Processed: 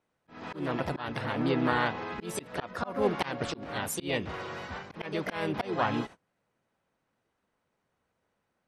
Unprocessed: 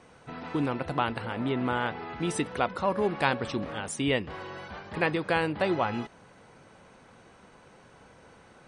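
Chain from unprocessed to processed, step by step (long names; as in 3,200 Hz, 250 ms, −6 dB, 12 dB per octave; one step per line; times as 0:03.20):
noise gate −44 dBFS, range −26 dB
pitch-shifted copies added +4 semitones −3 dB
volume swells 238 ms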